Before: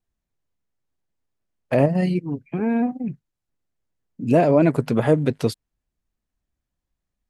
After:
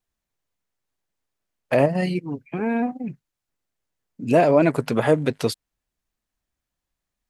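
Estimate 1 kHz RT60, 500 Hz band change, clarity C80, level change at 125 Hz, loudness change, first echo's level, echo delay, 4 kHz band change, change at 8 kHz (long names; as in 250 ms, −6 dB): no reverb audible, +0.5 dB, no reverb audible, −4.0 dB, −0.5 dB, no echo audible, no echo audible, +4.0 dB, can't be measured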